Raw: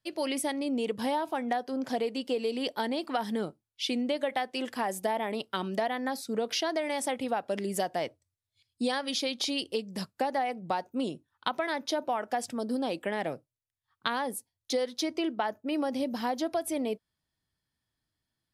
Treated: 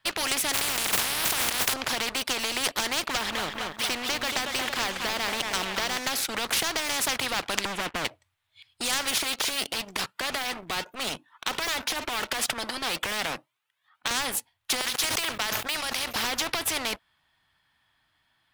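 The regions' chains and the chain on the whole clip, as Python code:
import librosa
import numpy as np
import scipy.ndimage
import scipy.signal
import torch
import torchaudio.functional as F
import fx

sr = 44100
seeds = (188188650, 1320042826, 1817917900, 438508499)

y = fx.spec_flatten(x, sr, power=0.27, at=(0.53, 1.72), fade=0.02)
y = fx.over_compress(y, sr, threshold_db=-42.0, ratio=-1.0, at=(0.53, 1.72), fade=0.02)
y = fx.chain(y, sr, fx.air_absorb(metres=220.0),
    fx.echo_crushed(ms=230, feedback_pct=55, bits=10, wet_db=-12.0), at=(3.07, 5.97))
y = fx.chain(y, sr, fx.bandpass_q(hz=220.0, q=1.9),
    fx.leveller(passes=3), at=(7.65, 8.05))
y = fx.chain(y, sr, fx.highpass(hz=160.0, slope=24),
    fx.transient(attack_db=-8, sustain_db=5),
    fx.comb_cascade(direction='rising', hz=1.4), at=(9.18, 14.11))
y = fx.chain(y, sr, fx.tone_stack(knobs='10-0-10'),
    fx.sustainer(db_per_s=32.0), at=(14.81, 16.16))
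y = fx.band_shelf(y, sr, hz=1600.0, db=14.0, octaves=2.7)
y = fx.leveller(y, sr, passes=2)
y = fx.spectral_comp(y, sr, ratio=4.0)
y = y * librosa.db_to_amplitude(-1.5)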